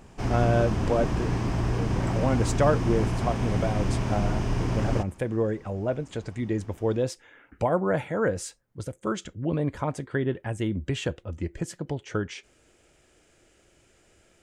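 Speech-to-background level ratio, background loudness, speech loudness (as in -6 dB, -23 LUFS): -1.5 dB, -28.0 LUFS, -29.5 LUFS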